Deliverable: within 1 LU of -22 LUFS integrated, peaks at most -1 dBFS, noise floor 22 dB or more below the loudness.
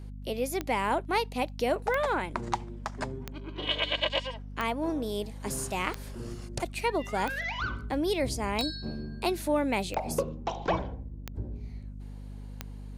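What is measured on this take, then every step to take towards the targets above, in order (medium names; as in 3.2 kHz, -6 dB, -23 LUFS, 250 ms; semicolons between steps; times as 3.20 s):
clicks found 10; hum 50 Hz; highest harmonic 250 Hz; hum level -39 dBFS; loudness -31.5 LUFS; peak level -11.0 dBFS; loudness target -22.0 LUFS
-> de-click; hum notches 50/100/150/200/250 Hz; trim +9.5 dB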